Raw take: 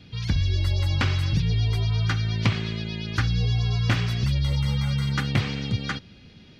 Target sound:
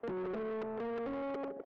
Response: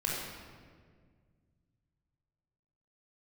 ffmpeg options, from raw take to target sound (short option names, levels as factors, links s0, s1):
-filter_complex "[0:a]asetrate=175959,aresample=44100,lowpass=f=2500:w=0.5412,lowpass=f=2500:w=1.3066,bandreject=f=60:t=h:w=6,bandreject=f=120:t=h:w=6,bandreject=f=180:t=h:w=6,bandreject=f=240:t=h:w=6,asplit=2[s0][s1];[s1]aecho=0:1:159|318|477:0.237|0.0545|0.0125[s2];[s0][s2]amix=inputs=2:normalize=0,afwtdn=0.0316,acrossover=split=200|440|990[s3][s4][s5][s6];[s3]acompressor=threshold=0.01:ratio=4[s7];[s4]acompressor=threshold=0.02:ratio=4[s8];[s5]acompressor=threshold=0.01:ratio=4[s9];[s6]acompressor=threshold=0.00224:ratio=4[s10];[s7][s8][s9][s10]amix=inputs=4:normalize=0,asoftclip=type=tanh:threshold=0.0158"